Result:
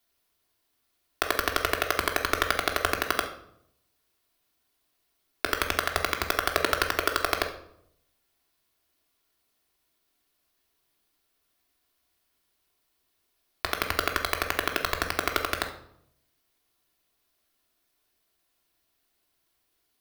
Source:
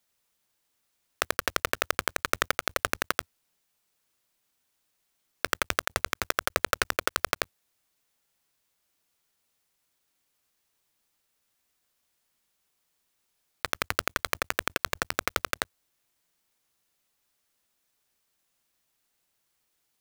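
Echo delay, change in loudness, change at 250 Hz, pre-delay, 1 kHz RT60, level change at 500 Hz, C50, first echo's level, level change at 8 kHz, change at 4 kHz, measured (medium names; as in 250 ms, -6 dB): no echo, +2.0 dB, +5.0 dB, 3 ms, 0.65 s, +3.5 dB, 9.0 dB, no echo, -1.5 dB, +2.5 dB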